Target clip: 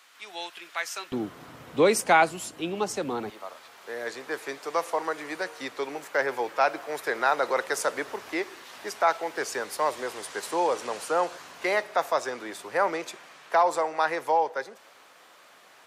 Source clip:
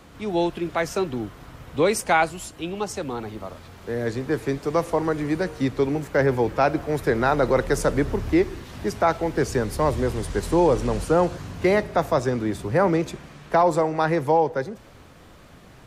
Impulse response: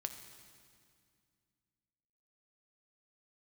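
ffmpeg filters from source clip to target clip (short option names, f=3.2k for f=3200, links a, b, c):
-af "asetnsamples=n=441:p=0,asendcmd='1.12 highpass f 190;3.3 highpass f 720',highpass=1.5k"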